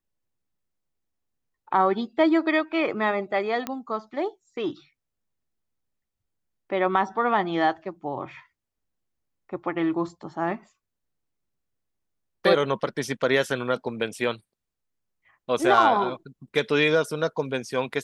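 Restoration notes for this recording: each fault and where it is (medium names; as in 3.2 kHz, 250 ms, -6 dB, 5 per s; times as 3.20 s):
3.67 s: pop -14 dBFS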